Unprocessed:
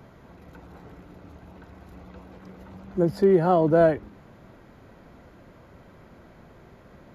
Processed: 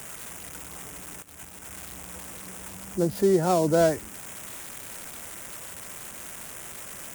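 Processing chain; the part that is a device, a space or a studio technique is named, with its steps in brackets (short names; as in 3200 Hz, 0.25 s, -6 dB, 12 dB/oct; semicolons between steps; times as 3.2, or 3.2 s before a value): budget class-D amplifier (switching dead time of 0.12 ms; switching spikes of -19 dBFS); 1.22–1.7 gate -36 dBFS, range -15 dB; gain -2.5 dB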